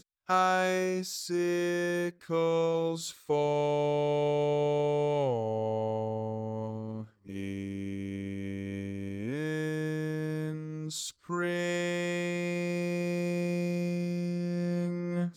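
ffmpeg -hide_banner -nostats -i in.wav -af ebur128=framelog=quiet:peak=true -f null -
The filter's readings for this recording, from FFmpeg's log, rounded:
Integrated loudness:
  I:         -31.4 LUFS
  Threshold: -41.4 LUFS
Loudness range:
  LRA:         7.1 LU
  Threshold: -51.7 LUFS
  LRA low:   -36.3 LUFS
  LRA high:  -29.2 LUFS
True peak:
  Peak:      -15.0 dBFS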